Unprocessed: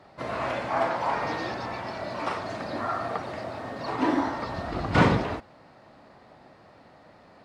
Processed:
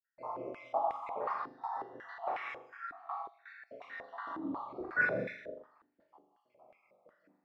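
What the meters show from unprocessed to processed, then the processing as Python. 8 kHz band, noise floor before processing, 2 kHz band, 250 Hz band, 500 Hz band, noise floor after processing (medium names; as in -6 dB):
under -25 dB, -54 dBFS, -4.0 dB, -16.5 dB, -10.5 dB, -79 dBFS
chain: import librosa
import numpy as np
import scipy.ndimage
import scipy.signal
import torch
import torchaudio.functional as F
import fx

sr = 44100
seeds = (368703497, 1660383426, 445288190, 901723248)

p1 = fx.spec_dropout(x, sr, seeds[0], share_pct=85)
p2 = fx.dereverb_blind(p1, sr, rt60_s=0.55)
p3 = fx.doubler(p2, sr, ms=25.0, db=-6.5)
p4 = fx.quant_float(p3, sr, bits=4)
p5 = p4 + fx.room_flutter(p4, sr, wall_m=7.0, rt60_s=0.61, dry=0)
p6 = fx.rev_gated(p5, sr, seeds[1], gate_ms=210, shape='rising', drr_db=1.0)
y = fx.filter_held_bandpass(p6, sr, hz=5.5, low_hz=300.0, high_hz=2100.0)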